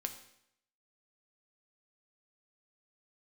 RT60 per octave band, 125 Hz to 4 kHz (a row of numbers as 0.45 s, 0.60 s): 0.75 s, 0.75 s, 0.75 s, 0.75 s, 0.75 s, 0.70 s